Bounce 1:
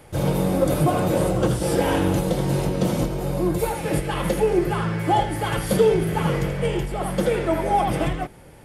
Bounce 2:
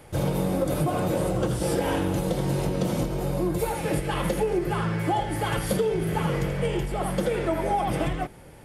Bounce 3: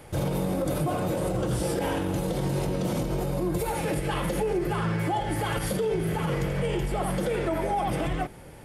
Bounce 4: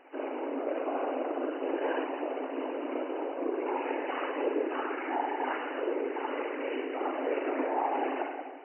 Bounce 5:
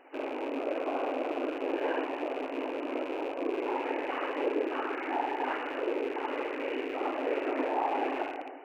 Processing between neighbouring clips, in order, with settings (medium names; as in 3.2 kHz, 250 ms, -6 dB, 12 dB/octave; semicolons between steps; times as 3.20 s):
compression, threshold -20 dBFS, peak gain reduction 8 dB; trim -1 dB
peak limiter -20.5 dBFS, peak gain reduction 8 dB; trim +1.5 dB
spring tank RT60 1.4 s, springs 39/59 ms, chirp 40 ms, DRR -0.5 dB; whisper effect; FFT band-pass 250–3000 Hz; trim -6 dB
rattle on loud lows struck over -49 dBFS, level -34 dBFS